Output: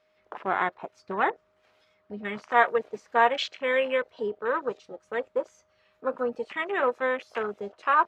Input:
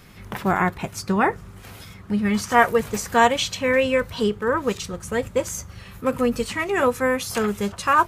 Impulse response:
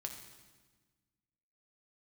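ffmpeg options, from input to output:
-filter_complex "[0:a]acrossover=split=330 5500:gain=0.0891 1 0.0708[s0][s1][s2];[s0][s1][s2]amix=inputs=3:normalize=0,aeval=exprs='val(0)+0.00447*sin(2*PI*620*n/s)':c=same,afwtdn=0.0282,volume=0.631"

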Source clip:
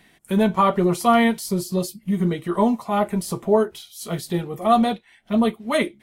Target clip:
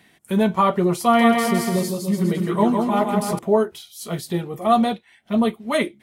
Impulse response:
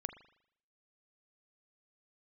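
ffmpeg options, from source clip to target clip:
-filter_complex "[0:a]highpass=62,asettb=1/sr,asplit=3[s0][s1][s2];[s0]atrim=end=1.034[s3];[s1]atrim=start=1.03:end=3.39,asetpts=PTS-STARTPTS,afade=t=in:d=0.004:c=qsin,afade=t=out:st=2.356:d=0.004:c=qsin,aecho=1:1:160|296|411.6|509.9|593.4:0.631|0.398|0.251|0.158|0.1,atrim=end_sample=104076[s4];[s2]atrim=start=3.386[s5];[s3][s4]acrossfade=d=0.004:c1=hsin:c2=qsin[s6];[s6][s5]acrossfade=d=0.004:c1=qsin:c2=hsin"

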